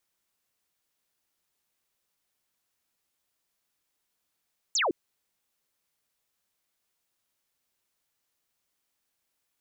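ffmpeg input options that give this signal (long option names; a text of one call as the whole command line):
ffmpeg -f lavfi -i "aevalsrc='0.0708*clip(t/0.002,0,1)*clip((0.16-t)/0.002,0,1)*sin(2*PI*7800*0.16/log(290/7800)*(exp(log(290/7800)*t/0.16)-1))':duration=0.16:sample_rate=44100" out.wav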